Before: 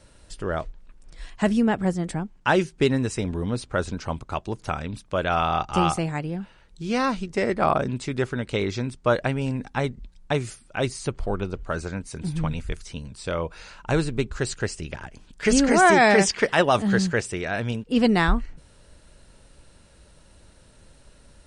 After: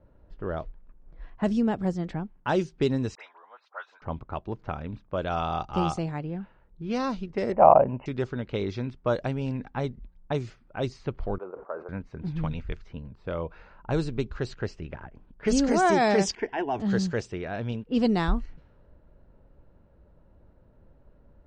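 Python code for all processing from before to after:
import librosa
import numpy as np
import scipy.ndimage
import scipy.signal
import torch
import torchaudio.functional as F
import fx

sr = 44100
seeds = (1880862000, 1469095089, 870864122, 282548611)

y = fx.chain(x, sr, fx.highpass(hz=900.0, slope=24),
    fx.dispersion(late='highs', ms=55.0, hz=2000.0), at=(3.15, 4.02))
y = fx.chain(y, sr, fx.brickwall_lowpass(high_hz=3000.0),
    fx.band_shelf(hz=730.0, db=13.0, octaves=1.2), at=(7.52, 8.06))
y = fx.chain(y, sr, fx.cheby1_bandpass(low_hz=470.0, high_hz=1200.0, order=2),
    fx.sustainer(db_per_s=110.0), at=(11.38, 11.89))
y = fx.chain(y, sr, fx.air_absorb(metres=160.0),
    fx.fixed_phaser(hz=820.0, stages=8), at=(16.35, 16.8))
y = scipy.signal.sosfilt(scipy.signal.butter(4, 6700.0, 'lowpass', fs=sr, output='sos'), y)
y = fx.env_lowpass(y, sr, base_hz=820.0, full_db=-17.0)
y = fx.dynamic_eq(y, sr, hz=2000.0, q=0.9, threshold_db=-39.0, ratio=4.0, max_db=-8)
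y = y * librosa.db_to_amplitude(-3.5)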